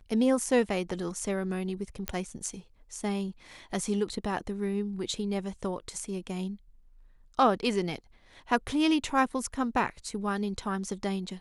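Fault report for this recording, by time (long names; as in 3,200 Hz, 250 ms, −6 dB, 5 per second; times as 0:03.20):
0:02.08: click −13 dBFS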